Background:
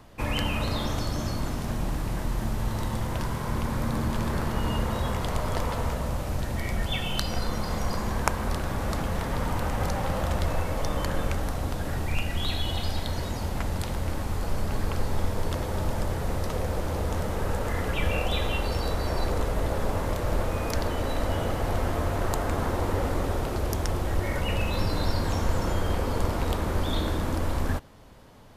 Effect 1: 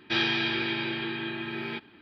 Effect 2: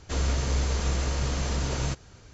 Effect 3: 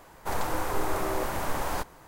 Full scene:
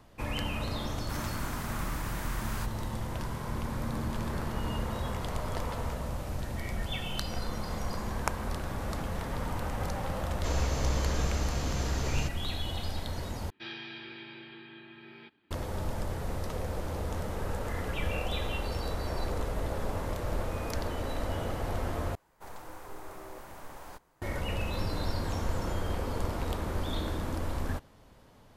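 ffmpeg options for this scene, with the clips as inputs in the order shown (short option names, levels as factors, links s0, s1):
-filter_complex "[3:a]asplit=2[s0][s1];[0:a]volume=0.501[s2];[s0]highpass=f=1100:w=0.5412,highpass=f=1100:w=1.3066[s3];[s2]asplit=3[s4][s5][s6];[s4]atrim=end=13.504[s7];[1:a]atrim=end=2.01,asetpts=PTS-STARTPTS,volume=0.158[s8];[s5]atrim=start=15.506:end=22.154[s9];[s1]atrim=end=2.07,asetpts=PTS-STARTPTS,volume=0.158[s10];[s6]atrim=start=24.216[s11];[s3]atrim=end=2.07,asetpts=PTS-STARTPTS,volume=0.596,afade=t=in:d=0.004:c=hsin,afade=t=out:st=2.066:d=0.004:c=hsin,adelay=830[s12];[2:a]atrim=end=2.33,asetpts=PTS-STARTPTS,volume=0.596,afade=t=in:d=0.004:c=hsin,afade=t=out:st=2.326:d=0.004:c=hsin,adelay=455994S[s13];[s7][s8]acrossfade=d=0.004:c1=hsin:c2=hsin[s14];[s14][s9]acrossfade=d=0.004:c1=hsin:c2=hsin[s15];[s15][s10]acrossfade=d=0.004:c1=hsin:c2=hsin[s16];[s16][s11]acrossfade=d=0.004:c1=hsin:c2=hsin[s17];[s17][s12][s13]amix=inputs=3:normalize=0"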